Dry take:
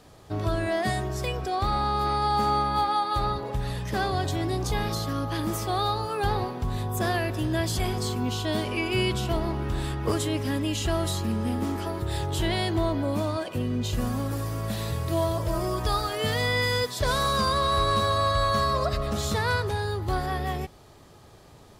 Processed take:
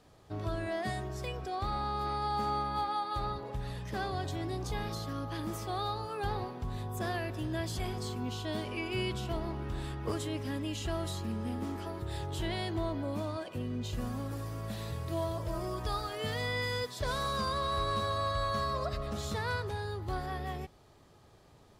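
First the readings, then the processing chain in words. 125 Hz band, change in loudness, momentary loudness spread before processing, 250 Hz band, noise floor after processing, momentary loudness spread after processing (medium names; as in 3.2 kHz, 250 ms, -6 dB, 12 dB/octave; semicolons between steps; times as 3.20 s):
-8.5 dB, -8.5 dB, 7 LU, -8.5 dB, -59 dBFS, 7 LU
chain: treble shelf 7.3 kHz -4.5 dB; trim -8.5 dB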